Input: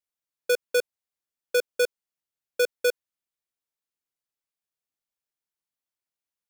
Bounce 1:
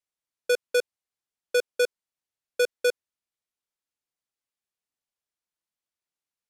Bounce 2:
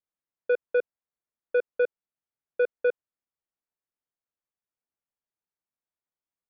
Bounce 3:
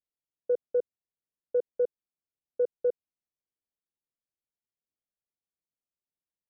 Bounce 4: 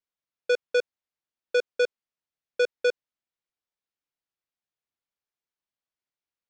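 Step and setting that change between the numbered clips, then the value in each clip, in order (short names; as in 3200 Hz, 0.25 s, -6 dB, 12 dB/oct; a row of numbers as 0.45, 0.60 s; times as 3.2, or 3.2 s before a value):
Bessel low-pass, frequency: 11000, 1500, 510, 4400 Hz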